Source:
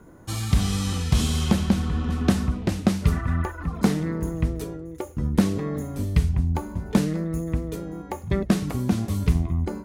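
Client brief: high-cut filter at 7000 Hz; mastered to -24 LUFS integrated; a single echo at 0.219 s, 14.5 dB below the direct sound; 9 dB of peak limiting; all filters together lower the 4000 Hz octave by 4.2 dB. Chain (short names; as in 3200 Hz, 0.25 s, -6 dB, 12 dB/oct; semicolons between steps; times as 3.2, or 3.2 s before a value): LPF 7000 Hz; bell 4000 Hz -5 dB; limiter -17 dBFS; echo 0.219 s -14.5 dB; gain +4 dB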